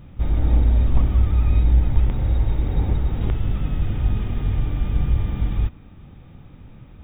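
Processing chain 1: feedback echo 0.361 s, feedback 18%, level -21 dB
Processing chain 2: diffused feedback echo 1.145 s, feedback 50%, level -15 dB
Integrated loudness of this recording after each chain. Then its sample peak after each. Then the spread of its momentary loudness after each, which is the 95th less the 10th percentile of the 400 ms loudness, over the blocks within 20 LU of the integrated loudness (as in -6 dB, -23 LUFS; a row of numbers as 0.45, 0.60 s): -22.0, -22.0 LUFS; -4.5, -5.0 dBFS; 7, 18 LU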